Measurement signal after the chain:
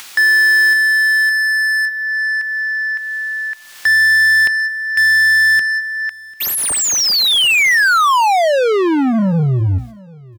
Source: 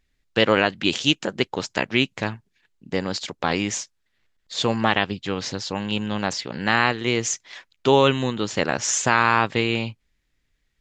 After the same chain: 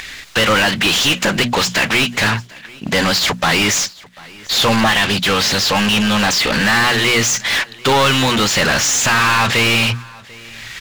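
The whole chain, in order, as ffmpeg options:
-filter_complex "[0:a]agate=range=-12dB:threshold=-43dB:ratio=16:detection=peak,equalizer=f=410:w=0.49:g=-9,bandreject=f=60:t=h:w=6,bandreject=f=120:t=h:w=6,bandreject=f=180:t=h:w=6,bandreject=f=240:t=h:w=6,asplit=2[a][b];[b]acontrast=78,volume=-1.5dB[c];[a][c]amix=inputs=2:normalize=0,alimiter=limit=-3.5dB:level=0:latency=1:release=108,acompressor=mode=upward:threshold=-34dB:ratio=2.5,asoftclip=type=tanh:threshold=-17.5dB,asplit=2[d][e];[e]highpass=f=720:p=1,volume=30dB,asoftclip=type=tanh:threshold=-17.5dB[f];[d][f]amix=inputs=2:normalize=0,lowpass=f=4.2k:p=1,volume=-6dB,aeval=exprs='sgn(val(0))*max(abs(val(0))-0.00106,0)':c=same,aecho=1:1:743|1486:0.0668|0.012,volume=8.5dB"

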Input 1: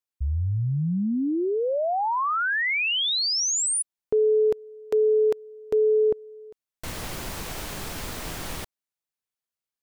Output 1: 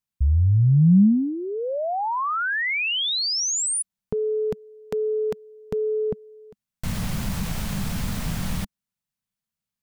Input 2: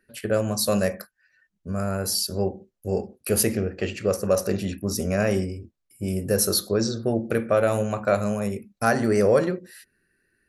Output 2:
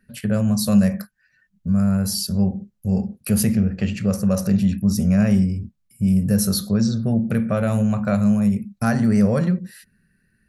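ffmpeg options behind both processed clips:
-filter_complex "[0:a]lowshelf=f=260:t=q:w=3:g=8.5,asplit=2[a][b];[b]acompressor=threshold=-25dB:ratio=6:attack=4.7:release=46:knee=6:detection=peak,volume=1dB[c];[a][c]amix=inputs=2:normalize=0,volume=-5dB"

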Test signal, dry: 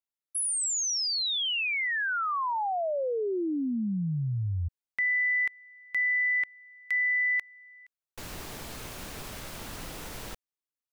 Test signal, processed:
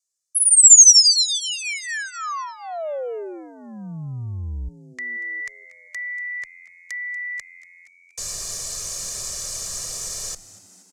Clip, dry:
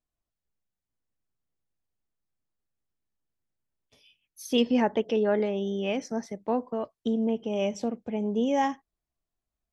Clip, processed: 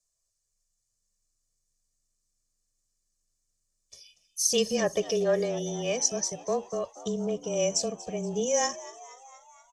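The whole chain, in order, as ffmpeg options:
-filter_complex "[0:a]aecho=1:1:1.7:0.81,aexciter=amount=5.6:drive=5.1:freq=4.5k,lowpass=f=7k:t=q:w=2.5,afreqshift=-23,asplit=2[a][b];[b]asplit=6[c][d][e][f][g][h];[c]adelay=237,afreqshift=87,volume=-18dB[i];[d]adelay=474,afreqshift=174,volume=-22.2dB[j];[e]adelay=711,afreqshift=261,volume=-26.3dB[k];[f]adelay=948,afreqshift=348,volume=-30.5dB[l];[g]adelay=1185,afreqshift=435,volume=-34.6dB[m];[h]adelay=1422,afreqshift=522,volume=-38.8dB[n];[i][j][k][l][m][n]amix=inputs=6:normalize=0[o];[a][o]amix=inputs=2:normalize=0,volume=-3dB"

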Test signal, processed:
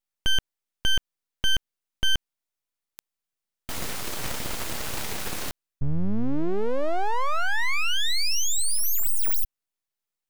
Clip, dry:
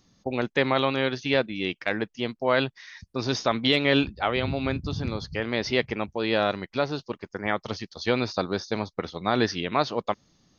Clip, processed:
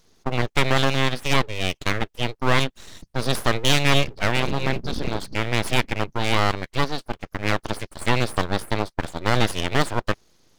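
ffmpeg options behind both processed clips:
-af "aeval=exprs='0.473*(cos(1*acos(clip(val(0)/0.473,-1,1)))-cos(1*PI/2))+0.0188*(cos(8*acos(clip(val(0)/0.473,-1,1)))-cos(8*PI/2))':c=same,aeval=exprs='abs(val(0))':c=same,volume=5dB"

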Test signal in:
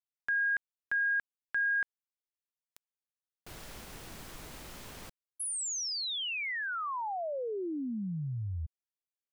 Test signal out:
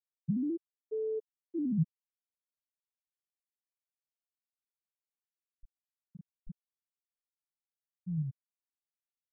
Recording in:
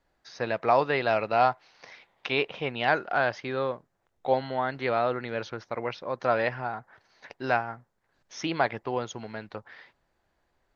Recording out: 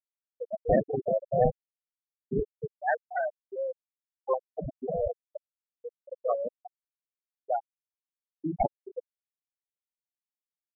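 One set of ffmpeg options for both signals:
-af "acrusher=samples=25:mix=1:aa=0.000001:lfo=1:lforange=25:lforate=0.24,equalizer=f=160:w=4.7:g=5.5,afftfilt=real='re*gte(hypot(re,im),0.282)':imag='im*gte(hypot(re,im),0.282)':win_size=1024:overlap=0.75"

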